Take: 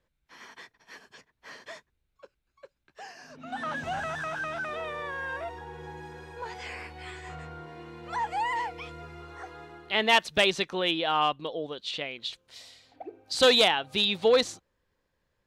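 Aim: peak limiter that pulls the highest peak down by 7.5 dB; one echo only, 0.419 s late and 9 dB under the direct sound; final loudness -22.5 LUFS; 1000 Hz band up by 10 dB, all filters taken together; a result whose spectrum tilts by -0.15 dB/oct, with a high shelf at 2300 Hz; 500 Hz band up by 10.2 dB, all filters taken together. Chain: bell 500 Hz +9 dB; bell 1000 Hz +8.5 dB; high shelf 2300 Hz +4.5 dB; limiter -8.5 dBFS; echo 0.419 s -9 dB; gain +0.5 dB

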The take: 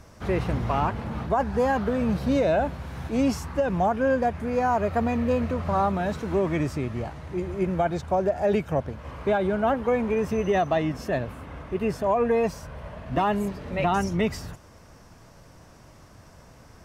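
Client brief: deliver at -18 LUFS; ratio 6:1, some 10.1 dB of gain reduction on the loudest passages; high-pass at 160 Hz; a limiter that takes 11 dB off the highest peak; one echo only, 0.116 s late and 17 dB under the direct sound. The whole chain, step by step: HPF 160 Hz; compressor 6:1, threshold -30 dBFS; limiter -30.5 dBFS; echo 0.116 s -17 dB; gain +21 dB

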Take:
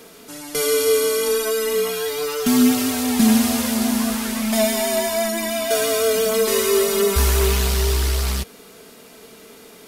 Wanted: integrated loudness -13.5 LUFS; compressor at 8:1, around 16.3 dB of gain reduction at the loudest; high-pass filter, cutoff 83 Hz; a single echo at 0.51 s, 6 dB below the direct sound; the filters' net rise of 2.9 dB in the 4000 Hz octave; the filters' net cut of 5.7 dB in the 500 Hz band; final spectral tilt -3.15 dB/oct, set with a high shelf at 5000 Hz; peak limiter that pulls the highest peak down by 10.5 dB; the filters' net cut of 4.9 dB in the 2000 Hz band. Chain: HPF 83 Hz; bell 500 Hz -7 dB; bell 2000 Hz -7.5 dB; bell 4000 Hz +8.5 dB; high shelf 5000 Hz -5.5 dB; compressor 8:1, threshold -30 dBFS; limiter -27.5 dBFS; echo 0.51 s -6 dB; gain +21.5 dB

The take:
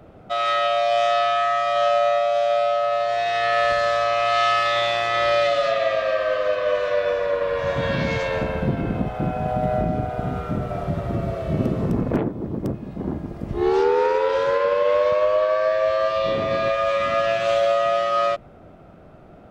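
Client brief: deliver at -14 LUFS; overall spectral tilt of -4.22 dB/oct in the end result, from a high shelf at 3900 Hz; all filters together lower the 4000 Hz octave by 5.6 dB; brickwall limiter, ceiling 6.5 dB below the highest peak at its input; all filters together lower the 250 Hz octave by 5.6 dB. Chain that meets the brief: bell 250 Hz -8.5 dB; high shelf 3900 Hz -5 dB; bell 4000 Hz -4.5 dB; gain +11 dB; limiter -5.5 dBFS

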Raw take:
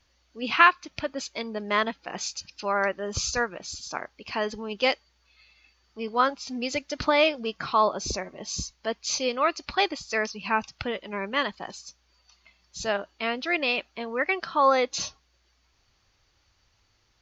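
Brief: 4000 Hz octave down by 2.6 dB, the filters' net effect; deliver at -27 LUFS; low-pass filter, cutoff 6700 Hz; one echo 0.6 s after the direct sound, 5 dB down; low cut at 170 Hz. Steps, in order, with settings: HPF 170 Hz; LPF 6700 Hz; bell 4000 Hz -3 dB; echo 0.6 s -5 dB

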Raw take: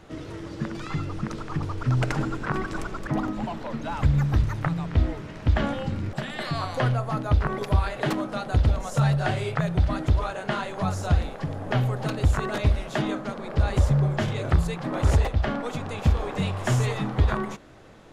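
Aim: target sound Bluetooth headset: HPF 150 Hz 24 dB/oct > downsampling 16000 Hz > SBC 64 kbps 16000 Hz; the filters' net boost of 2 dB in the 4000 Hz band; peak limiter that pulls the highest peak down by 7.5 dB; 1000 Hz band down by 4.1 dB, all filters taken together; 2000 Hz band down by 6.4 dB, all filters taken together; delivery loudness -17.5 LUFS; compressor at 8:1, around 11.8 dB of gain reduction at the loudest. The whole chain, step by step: bell 1000 Hz -3.5 dB; bell 2000 Hz -8.5 dB; bell 4000 Hz +5.5 dB; compressor 8:1, threshold -27 dBFS; limiter -23.5 dBFS; HPF 150 Hz 24 dB/oct; downsampling 16000 Hz; gain +19 dB; SBC 64 kbps 16000 Hz

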